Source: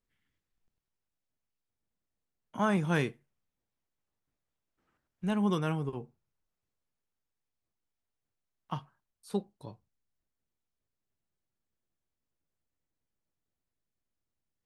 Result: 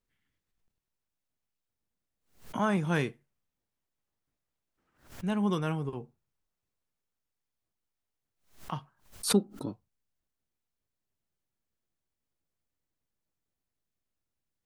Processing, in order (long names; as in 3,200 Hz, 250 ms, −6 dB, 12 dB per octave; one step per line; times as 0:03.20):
0:09.32–0:09.72: hollow resonant body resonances 270/1,300 Hz, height 15 dB → 18 dB, ringing for 30 ms
background raised ahead of every attack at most 140 dB per second